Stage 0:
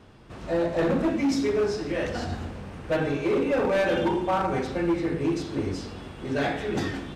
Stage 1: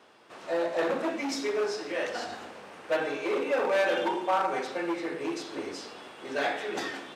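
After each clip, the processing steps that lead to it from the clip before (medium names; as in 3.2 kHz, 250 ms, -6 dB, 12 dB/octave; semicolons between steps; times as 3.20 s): high-pass 490 Hz 12 dB/octave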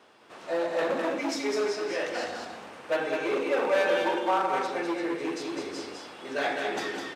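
delay 205 ms -4.5 dB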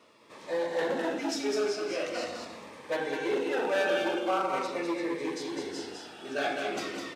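Shepard-style phaser falling 0.42 Hz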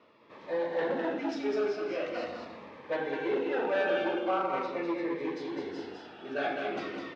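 distance through air 260 m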